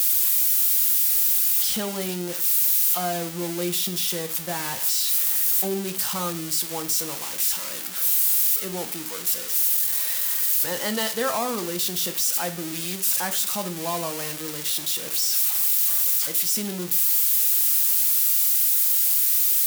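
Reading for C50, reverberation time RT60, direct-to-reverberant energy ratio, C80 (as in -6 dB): 14.0 dB, 0.45 s, 8.0 dB, 19.0 dB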